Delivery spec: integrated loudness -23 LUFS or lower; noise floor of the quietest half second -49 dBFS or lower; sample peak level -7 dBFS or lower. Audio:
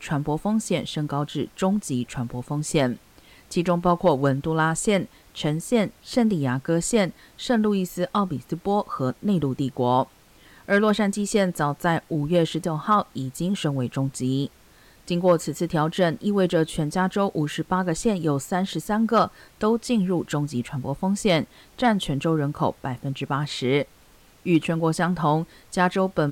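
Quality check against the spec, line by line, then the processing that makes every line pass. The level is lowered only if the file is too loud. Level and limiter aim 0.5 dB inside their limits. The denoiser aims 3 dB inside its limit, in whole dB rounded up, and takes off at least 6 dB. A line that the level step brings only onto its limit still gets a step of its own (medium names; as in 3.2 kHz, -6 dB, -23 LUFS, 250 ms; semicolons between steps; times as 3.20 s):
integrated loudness -24.0 LUFS: pass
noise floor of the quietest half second -54 dBFS: pass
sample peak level -8.5 dBFS: pass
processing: none needed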